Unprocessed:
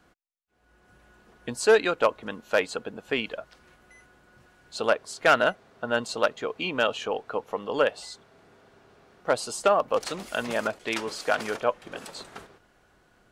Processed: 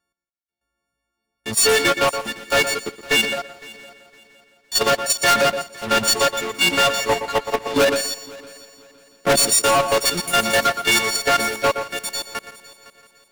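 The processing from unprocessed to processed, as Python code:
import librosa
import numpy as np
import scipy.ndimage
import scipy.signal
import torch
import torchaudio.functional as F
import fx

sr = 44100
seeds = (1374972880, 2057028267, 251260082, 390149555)

y = fx.freq_snap(x, sr, grid_st=4)
y = fx.dereverb_blind(y, sr, rt60_s=0.82)
y = fx.peak_eq(y, sr, hz=240.0, db=14.0, octaves=2.2, at=(7.76, 9.45), fade=0.02)
y = fx.level_steps(y, sr, step_db=13)
y = fx.leveller(y, sr, passes=5)
y = y + 10.0 ** (-12.5 / 20.0) * np.pad(y, (int(119 * sr / 1000.0), 0))[:len(y)]
y = 10.0 ** (-16.0 / 20.0) * np.tanh(y / 10.0 ** (-16.0 / 20.0))
y = fx.echo_heads(y, sr, ms=170, heads='first and third', feedback_pct=47, wet_db=-16.0)
y = fx.upward_expand(y, sr, threshold_db=-31.0, expansion=1.5)
y = y * 10.0 ** (3.0 / 20.0)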